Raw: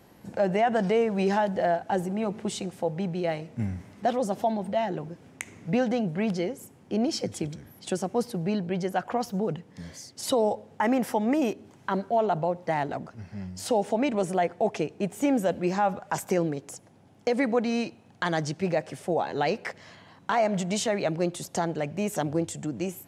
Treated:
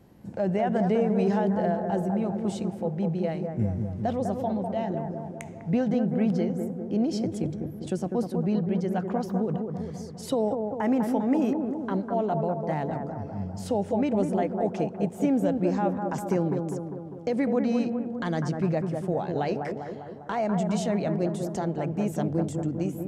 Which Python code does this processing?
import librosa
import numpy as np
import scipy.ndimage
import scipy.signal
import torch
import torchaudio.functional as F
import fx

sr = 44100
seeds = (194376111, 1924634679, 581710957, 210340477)

y = fx.low_shelf(x, sr, hz=450.0, db=12.0)
y = fx.echo_bbd(y, sr, ms=200, stages=2048, feedback_pct=61, wet_db=-5)
y = F.gain(torch.from_numpy(y), -8.0).numpy()